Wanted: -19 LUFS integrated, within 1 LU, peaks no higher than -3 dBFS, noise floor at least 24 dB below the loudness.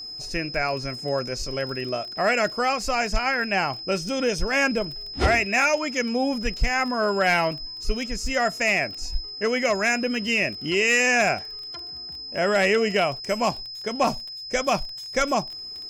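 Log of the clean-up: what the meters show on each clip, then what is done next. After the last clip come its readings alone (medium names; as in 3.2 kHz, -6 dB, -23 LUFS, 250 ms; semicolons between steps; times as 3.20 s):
tick rate 23 per s; steady tone 5.1 kHz; tone level -34 dBFS; loudness -24.0 LUFS; peak level -10.0 dBFS; loudness target -19.0 LUFS
-> de-click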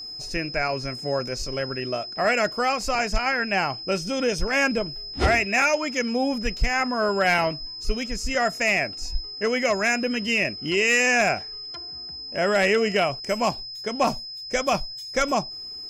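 tick rate 0 per s; steady tone 5.1 kHz; tone level -34 dBFS
-> band-stop 5.1 kHz, Q 30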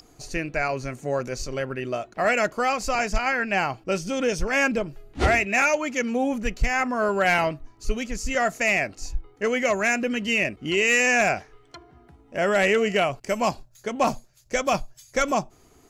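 steady tone not found; loudness -24.0 LUFS; peak level -10.5 dBFS; loudness target -19.0 LUFS
-> trim +5 dB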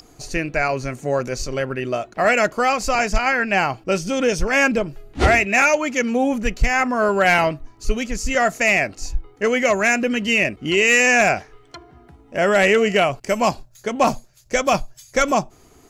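loudness -19.0 LUFS; peak level -5.5 dBFS; noise floor -51 dBFS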